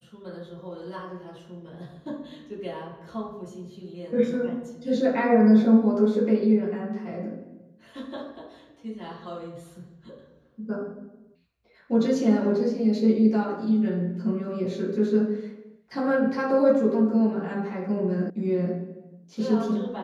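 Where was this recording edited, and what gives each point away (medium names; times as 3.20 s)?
18.30 s: sound stops dead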